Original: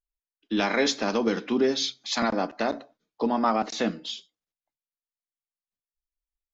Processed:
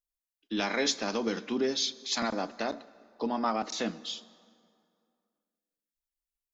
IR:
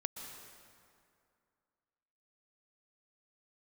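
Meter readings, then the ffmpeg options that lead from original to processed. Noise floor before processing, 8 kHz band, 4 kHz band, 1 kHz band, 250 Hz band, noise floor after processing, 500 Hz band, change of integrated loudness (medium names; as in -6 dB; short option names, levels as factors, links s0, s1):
under -85 dBFS, no reading, -2.0 dB, -6.0 dB, -6.0 dB, under -85 dBFS, -6.0 dB, -5.0 dB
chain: -filter_complex "[0:a]highshelf=f=4500:g=9,asplit=2[s0][s1];[1:a]atrim=start_sample=2205[s2];[s1][s2]afir=irnorm=-1:irlink=0,volume=0.188[s3];[s0][s3]amix=inputs=2:normalize=0,volume=0.422"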